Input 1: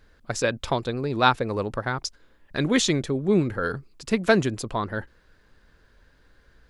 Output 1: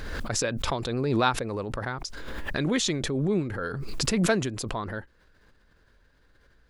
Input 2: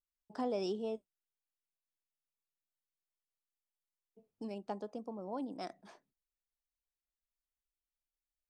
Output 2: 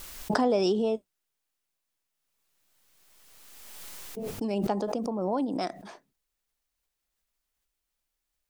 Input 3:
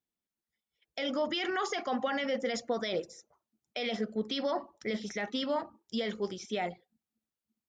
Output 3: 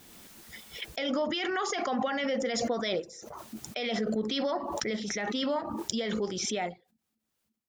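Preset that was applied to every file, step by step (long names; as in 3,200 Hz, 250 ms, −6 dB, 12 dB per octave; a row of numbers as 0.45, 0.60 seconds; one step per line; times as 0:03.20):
background raised ahead of every attack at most 23 dB per second
normalise the peak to −9 dBFS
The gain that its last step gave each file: −6.0, +11.0, +0.5 decibels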